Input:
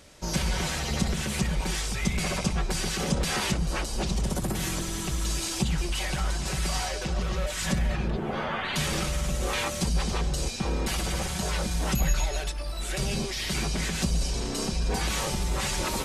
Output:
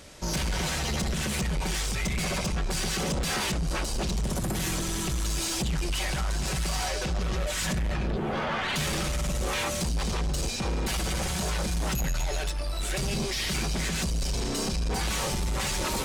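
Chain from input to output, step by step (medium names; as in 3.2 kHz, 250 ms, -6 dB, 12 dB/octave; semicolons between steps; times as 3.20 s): in parallel at +2.5 dB: peak limiter -21 dBFS, peak gain reduction 8.5 dB; on the sum: saturation -21 dBFS, distortion -12 dB; trim -3 dB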